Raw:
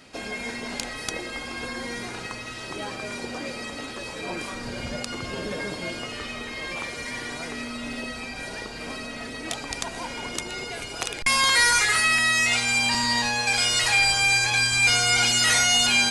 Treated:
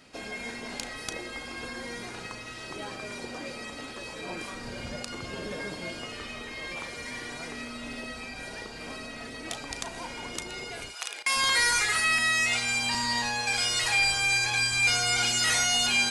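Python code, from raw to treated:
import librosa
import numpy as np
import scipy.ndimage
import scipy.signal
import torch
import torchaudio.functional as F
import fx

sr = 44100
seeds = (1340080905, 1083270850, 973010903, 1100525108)

y = fx.highpass(x, sr, hz=fx.line((10.9, 1500.0), (11.35, 370.0)), slope=12, at=(10.9, 11.35), fade=0.02)
y = fx.doubler(y, sr, ms=36.0, db=-13.0)
y = y * librosa.db_to_amplitude(-5.0)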